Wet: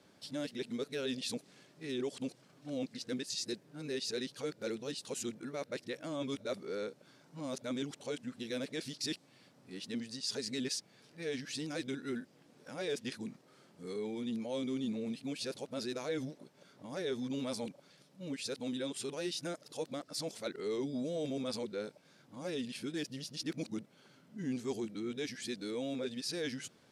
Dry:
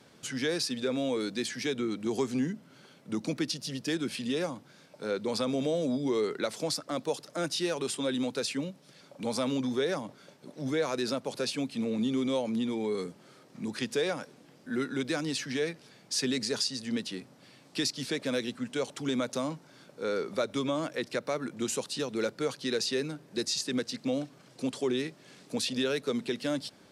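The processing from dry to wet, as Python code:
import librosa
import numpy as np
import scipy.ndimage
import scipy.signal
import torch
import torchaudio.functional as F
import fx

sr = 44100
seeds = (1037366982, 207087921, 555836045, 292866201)

y = np.flip(x).copy()
y = fx.dynamic_eq(y, sr, hz=1100.0, q=1.4, threshold_db=-48.0, ratio=4.0, max_db=-5)
y = y * 10.0 ** (-7.0 / 20.0)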